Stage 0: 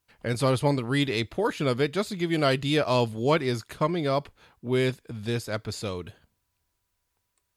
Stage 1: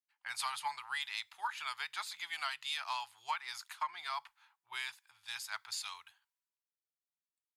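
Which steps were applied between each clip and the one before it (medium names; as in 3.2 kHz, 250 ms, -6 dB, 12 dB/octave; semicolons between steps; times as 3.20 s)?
elliptic high-pass 850 Hz, stop band 40 dB; compression 10:1, threshold -33 dBFS, peak gain reduction 10.5 dB; three bands expanded up and down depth 70%; trim -2 dB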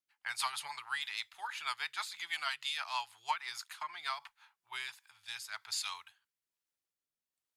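rotary cabinet horn 6.3 Hz, later 1.2 Hz, at 4.15 s; trim +4.5 dB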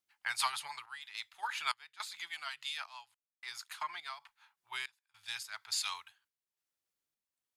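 random-step tremolo, depth 100%; trim +3.5 dB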